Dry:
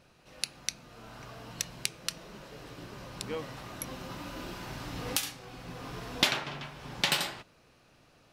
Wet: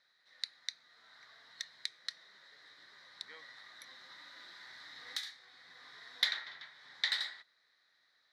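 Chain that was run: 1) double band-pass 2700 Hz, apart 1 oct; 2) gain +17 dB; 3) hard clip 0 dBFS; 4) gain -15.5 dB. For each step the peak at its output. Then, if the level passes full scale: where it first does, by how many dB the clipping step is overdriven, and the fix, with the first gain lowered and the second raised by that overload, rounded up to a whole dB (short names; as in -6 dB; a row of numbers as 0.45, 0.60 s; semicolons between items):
-12.5, +4.5, 0.0, -15.5 dBFS; step 2, 4.5 dB; step 2 +12 dB, step 4 -10.5 dB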